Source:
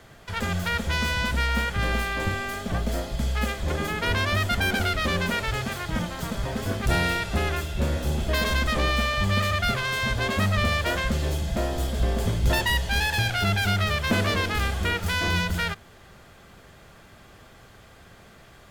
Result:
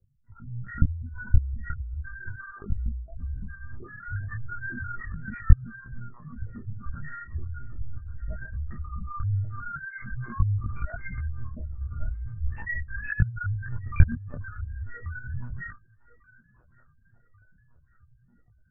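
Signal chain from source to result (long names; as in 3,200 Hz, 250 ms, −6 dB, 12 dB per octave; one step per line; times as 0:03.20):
automatic gain control gain up to 11.5 dB
spectral peaks only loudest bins 2
delay with a band-pass on its return 1,140 ms, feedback 44%, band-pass 630 Hz, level −15 dB
one-pitch LPC vocoder at 8 kHz 120 Hz
micro pitch shift up and down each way 13 cents
level −10 dB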